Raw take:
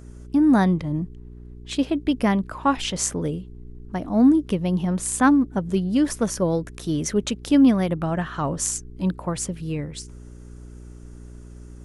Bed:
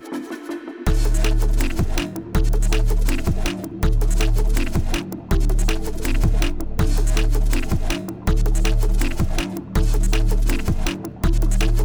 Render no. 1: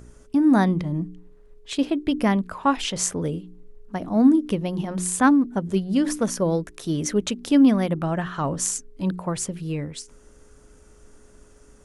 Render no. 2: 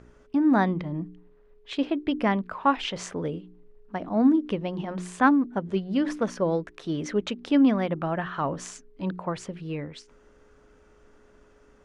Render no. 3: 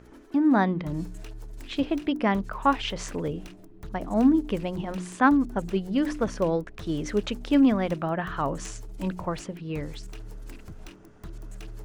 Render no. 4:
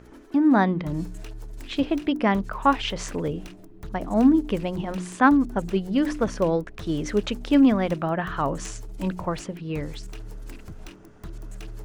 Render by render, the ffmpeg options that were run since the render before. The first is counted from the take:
-af "bandreject=f=60:t=h:w=4,bandreject=f=120:t=h:w=4,bandreject=f=180:t=h:w=4,bandreject=f=240:t=h:w=4,bandreject=f=300:t=h:w=4,bandreject=f=360:t=h:w=4"
-af "lowpass=3100,lowshelf=f=240:g=-9"
-filter_complex "[1:a]volume=0.075[s0];[0:a][s0]amix=inputs=2:normalize=0"
-af "volume=1.33"

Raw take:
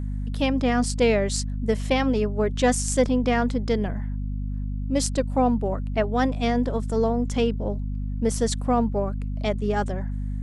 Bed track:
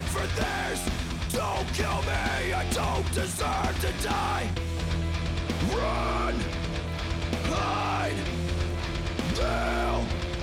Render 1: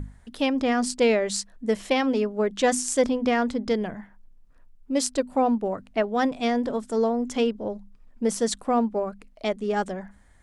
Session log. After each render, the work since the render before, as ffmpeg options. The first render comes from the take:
-af "bandreject=f=50:t=h:w=6,bandreject=f=100:t=h:w=6,bandreject=f=150:t=h:w=6,bandreject=f=200:t=h:w=6,bandreject=f=250:t=h:w=6"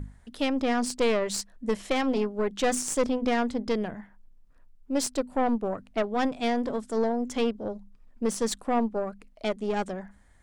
-af "aeval=exprs='(tanh(7.94*val(0)+0.55)-tanh(0.55))/7.94':c=same"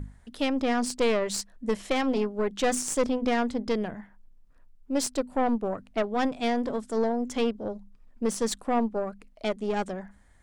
-af anull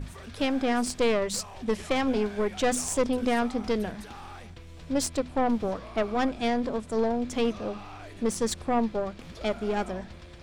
-filter_complex "[1:a]volume=0.158[s0];[0:a][s0]amix=inputs=2:normalize=0"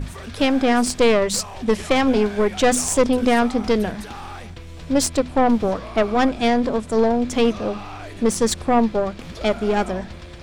-af "volume=2.66"

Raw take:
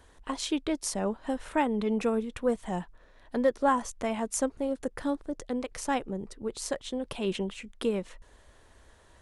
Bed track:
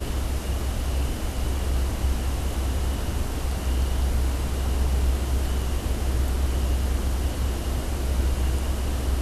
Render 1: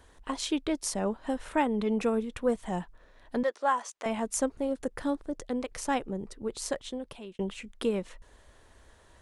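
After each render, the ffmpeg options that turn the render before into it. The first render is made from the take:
-filter_complex "[0:a]asettb=1/sr,asplit=3[s0][s1][s2];[s0]atrim=end=3.434[s3];[s1]atrim=start=3.43:end=4.06,asetpts=PTS-STARTPTS,afade=t=in:d=0.004:c=qsin,afade=t=out:st=0.626:d=0.004:c=qsin,highpass=630,lowpass=7800[s4];[s2]atrim=start=4.056[s5];[s3][s4]acrossfade=d=0.004:c1=hsin:c2=qsin[s6];[s6][s5]acrossfade=d=0.004:c1=qsin:c2=hsin,asplit=2[s7][s8];[s7]atrim=end=7.39,asetpts=PTS-STARTPTS,afade=t=out:st=6.76:d=0.63[s9];[s8]atrim=start=7.39,asetpts=PTS-STARTPTS,afade=t=in:d=0.004:c=hsin[s10];[s9][s10]concat=n=2:v=0:a=1"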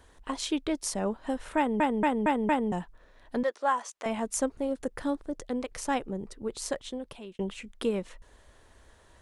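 -filter_complex "[0:a]asplit=6[s0][s1][s2][s3][s4][s5];[s0]atrim=end=1.802[s6];[s1]atrim=start=1.568:end=1.802[s7];[s2]atrim=start=1.568:end=1.802[s8];[s3]atrim=start=1.568:end=1.802[s9];[s4]atrim=start=1.568:end=1.802[s10];[s5]atrim=start=2.718[s11];[s6][s7]acrossfade=d=0.004:c1=hsin:c2=hsin[s12];[s12][s8]acrossfade=d=0.004:c1=hsin:c2=hsin[s13];[s13][s9]acrossfade=d=0.004:c1=hsin:c2=hsin[s14];[s14][s10]acrossfade=d=0.004:c1=hsin:c2=hsin[s15];[s15][s11]acrossfade=d=0.004:c1=hsin:c2=hsin"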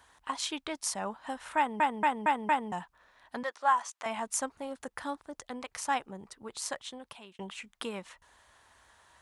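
-af "highpass=65,lowshelf=f=640:t=q:w=1.5:g=-9"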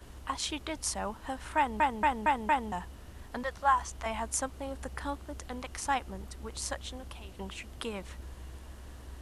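-filter_complex "[1:a]volume=0.0841[s0];[0:a][s0]amix=inputs=2:normalize=0"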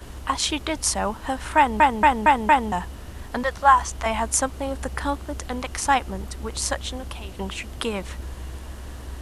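-af "volume=3.35"

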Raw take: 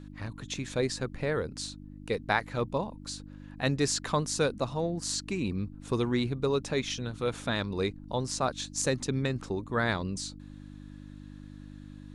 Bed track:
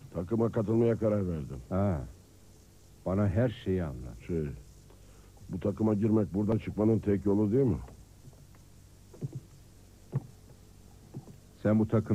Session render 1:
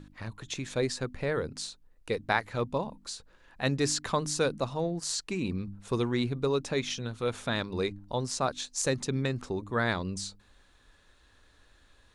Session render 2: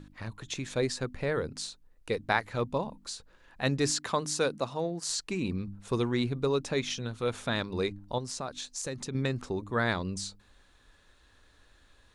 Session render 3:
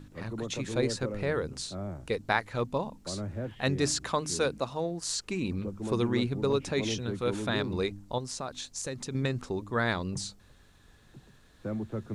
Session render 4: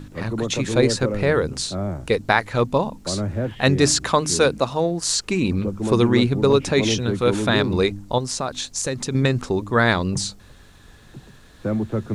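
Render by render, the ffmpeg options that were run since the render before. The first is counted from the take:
-af "bandreject=f=50:t=h:w=4,bandreject=f=100:t=h:w=4,bandreject=f=150:t=h:w=4,bandreject=f=200:t=h:w=4,bandreject=f=250:t=h:w=4,bandreject=f=300:t=h:w=4"
-filter_complex "[0:a]asettb=1/sr,asplit=3[s0][s1][s2];[s0]atrim=end=3.914[s3];[s1]atrim=start=3.91:end=5.08,asetpts=PTS-STARTPTS,afade=t=in:d=0.004:c=qsin,afade=t=out:st=1.166:d=0.004:c=qsin,highpass=f=200:p=1[s4];[s2]atrim=start=5.076[s5];[s3][s4]acrossfade=d=0.004:c1=hsin:c2=qsin[s6];[s6][s5]acrossfade=d=0.004:c1=qsin:c2=hsin,asettb=1/sr,asplit=3[s7][s8][s9];[s7]atrim=end=8.184[s10];[s8]atrim=start=8.18:end=9.15,asetpts=PTS-STARTPTS,afade=t=in:d=0.004:c=qsin,afade=t=out:st=0.966:d=0.004:c=qsin,acompressor=threshold=0.0178:ratio=2.5:attack=3.2:release=140:knee=1:detection=peak[s11];[s9]atrim=start=9.146[s12];[s10][s11]acrossfade=d=0.004:c1=hsin:c2=qsin[s13];[s13][s12]acrossfade=d=0.004:c1=qsin:c2=hsin"
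-filter_complex "[1:a]volume=0.376[s0];[0:a][s0]amix=inputs=2:normalize=0"
-af "volume=3.55,alimiter=limit=0.794:level=0:latency=1"

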